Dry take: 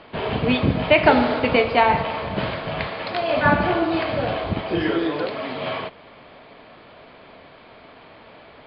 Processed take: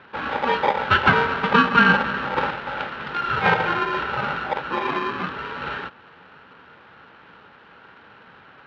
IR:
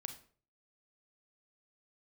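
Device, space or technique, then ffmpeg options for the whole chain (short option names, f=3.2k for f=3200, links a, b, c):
ring modulator pedal into a guitar cabinet: -filter_complex "[0:a]asettb=1/sr,asplit=3[a][b][c];[a]atrim=end=1.514[d];[b]atrim=start=1.51:end=2.51,asetpts=PTS-STARTPTS,afade=t=in:d=0.004:c=qsin,afade=t=out:st=0.996:d=0.004:c=qsin,equalizer=f=350:t=o:w=2.3:g=6[e];[c]atrim=start=2.506[f];[d][e]acrossfade=d=0.004:c1=hsin:c2=qsin[g];[g][f]acrossfade=d=0.004:c1=qsin:c2=hsin,aeval=exprs='val(0)*sgn(sin(2*PI*700*n/s))':c=same,highpass=100,equalizer=f=180:t=q:w=4:g=4,equalizer=f=490:t=q:w=4:g=4,equalizer=f=830:t=q:w=4:g=7,equalizer=f=1.5k:t=q:w=4:g=8,lowpass=f=3.5k:w=0.5412,lowpass=f=3.5k:w=1.3066,volume=-5dB"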